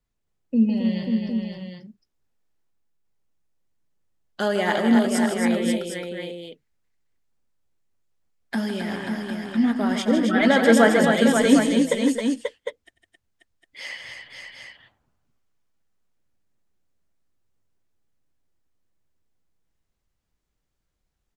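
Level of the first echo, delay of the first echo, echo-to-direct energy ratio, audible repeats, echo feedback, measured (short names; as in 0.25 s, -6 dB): -16.5 dB, 93 ms, -0.5 dB, 5, no steady repeat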